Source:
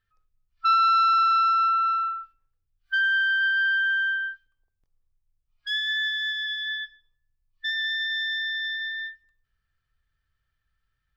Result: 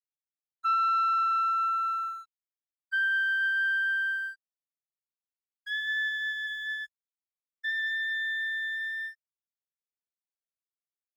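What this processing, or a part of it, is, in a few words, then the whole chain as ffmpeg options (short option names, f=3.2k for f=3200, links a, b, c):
pocket radio on a weak battery: -af "highpass=310,lowpass=3.1k,aeval=exprs='sgn(val(0))*max(abs(val(0))-0.00316,0)':c=same,equalizer=f=1.8k:t=o:w=0.36:g=6.5,volume=-6.5dB"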